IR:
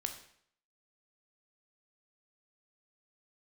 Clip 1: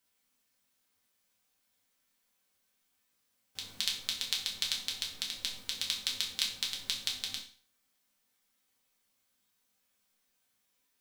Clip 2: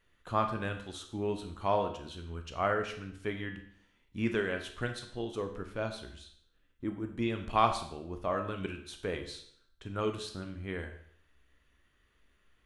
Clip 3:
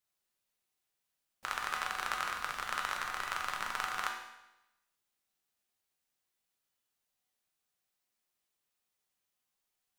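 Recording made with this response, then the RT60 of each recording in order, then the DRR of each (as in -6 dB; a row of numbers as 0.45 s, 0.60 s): 2; 0.40 s, 0.65 s, 0.95 s; -2.5 dB, 5.5 dB, 0.0 dB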